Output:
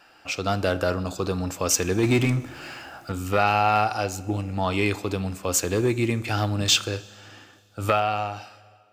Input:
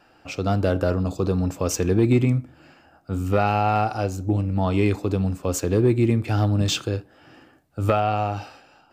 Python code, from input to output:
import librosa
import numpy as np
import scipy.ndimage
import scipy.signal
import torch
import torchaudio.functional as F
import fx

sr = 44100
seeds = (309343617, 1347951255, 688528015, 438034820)

y = fx.fade_out_tail(x, sr, length_s=1.1)
y = fx.tilt_shelf(y, sr, db=-6.5, hz=710.0)
y = fx.power_curve(y, sr, exponent=0.7, at=(2.03, 3.12))
y = fx.rev_schroeder(y, sr, rt60_s=2.3, comb_ms=26, drr_db=20.0)